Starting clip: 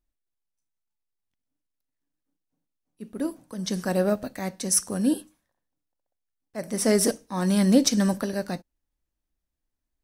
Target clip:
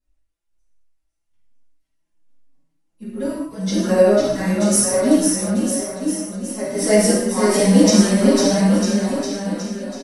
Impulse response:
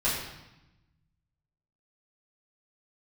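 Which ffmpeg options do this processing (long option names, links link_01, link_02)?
-filter_complex "[0:a]aecho=1:1:500|950|1355|1720|2048:0.631|0.398|0.251|0.158|0.1[link_01];[1:a]atrim=start_sample=2205,afade=type=out:start_time=0.17:duration=0.01,atrim=end_sample=7938,asetrate=23814,aresample=44100[link_02];[link_01][link_02]afir=irnorm=-1:irlink=0,asplit=2[link_03][link_04];[link_04]adelay=4.9,afreqshift=1.2[link_05];[link_03][link_05]amix=inputs=2:normalize=1,volume=-4.5dB"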